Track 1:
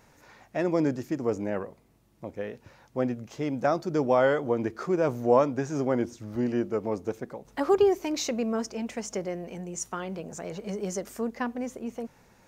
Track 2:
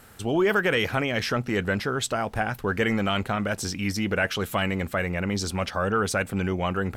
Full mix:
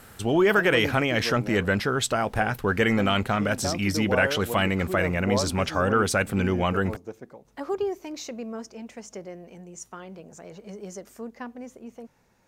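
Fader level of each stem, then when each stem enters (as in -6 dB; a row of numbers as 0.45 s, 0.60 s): -6.5 dB, +2.0 dB; 0.00 s, 0.00 s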